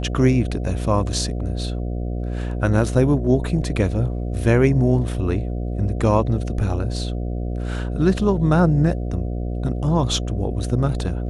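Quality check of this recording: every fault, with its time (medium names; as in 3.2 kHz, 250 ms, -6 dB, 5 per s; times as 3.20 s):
buzz 60 Hz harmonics 12 -25 dBFS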